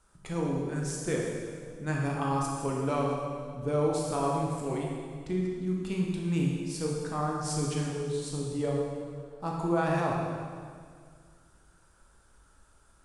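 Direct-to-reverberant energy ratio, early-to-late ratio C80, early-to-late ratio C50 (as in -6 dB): -2.5 dB, 1.5 dB, 0.0 dB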